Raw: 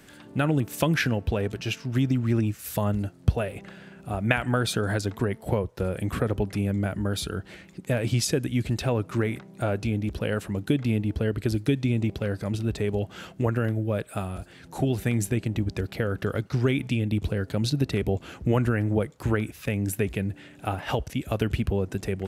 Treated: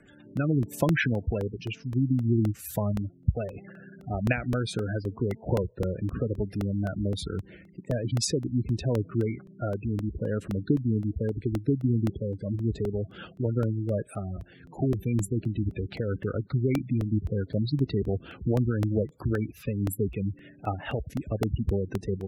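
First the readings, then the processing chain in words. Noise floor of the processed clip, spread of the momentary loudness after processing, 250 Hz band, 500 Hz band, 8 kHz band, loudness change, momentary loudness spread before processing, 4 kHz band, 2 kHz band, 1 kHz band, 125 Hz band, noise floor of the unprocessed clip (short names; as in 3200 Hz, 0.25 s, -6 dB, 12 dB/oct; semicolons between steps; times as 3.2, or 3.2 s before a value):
-53 dBFS, 9 LU, -1.5 dB, -2.5 dB, -4.0 dB, -2.0 dB, 7 LU, -6.0 dB, -5.5 dB, -6.0 dB, -1.5 dB, -50 dBFS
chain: spectral gate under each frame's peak -15 dB strong; rotary speaker horn 0.7 Hz, later 5.5 Hz, at 11.37; crackling interface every 0.26 s, samples 64, repeat, from 0.37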